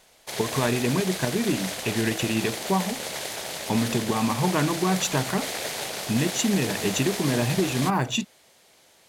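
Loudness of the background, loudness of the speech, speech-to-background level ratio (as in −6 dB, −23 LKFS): −30.5 LKFS, −26.0 LKFS, 4.5 dB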